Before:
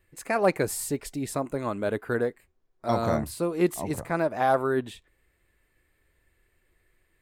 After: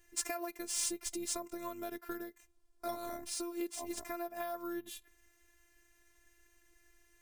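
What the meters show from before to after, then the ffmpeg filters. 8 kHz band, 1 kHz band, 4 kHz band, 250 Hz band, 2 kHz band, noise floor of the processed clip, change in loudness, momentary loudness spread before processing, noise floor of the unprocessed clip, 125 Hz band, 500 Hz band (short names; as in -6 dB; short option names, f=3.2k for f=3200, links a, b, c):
-0.5 dB, -15.0 dB, -1.0 dB, -13.0 dB, -15.0 dB, -70 dBFS, -12.0 dB, 8 LU, -71 dBFS, -30.5 dB, -16.5 dB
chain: -af "acompressor=threshold=-36dB:ratio=12,acrusher=samples=3:mix=1:aa=0.000001,equalizer=f=10k:t=o:w=1.8:g=12.5,afftfilt=real='hypot(re,im)*cos(PI*b)':imag='0':win_size=512:overlap=0.75,volume=1.5dB"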